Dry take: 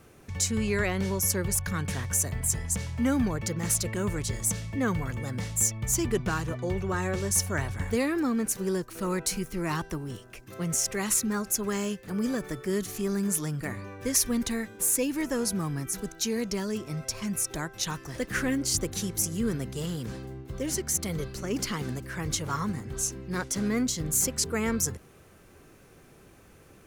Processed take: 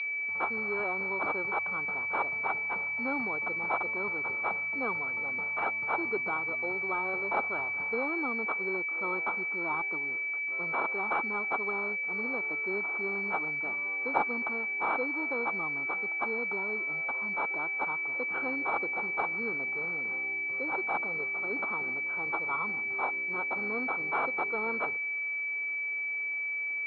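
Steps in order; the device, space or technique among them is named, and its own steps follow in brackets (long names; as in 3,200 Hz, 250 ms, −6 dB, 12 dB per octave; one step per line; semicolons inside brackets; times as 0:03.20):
toy sound module (linearly interpolated sample-rate reduction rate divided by 8×; switching amplifier with a slow clock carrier 2,300 Hz; loudspeaker in its box 510–4,200 Hz, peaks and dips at 580 Hz −4 dB, 850 Hz +6 dB, 1,300 Hz +9 dB, 1,800 Hz −7 dB, 2,700 Hz +3 dB, 4,100 Hz +9 dB)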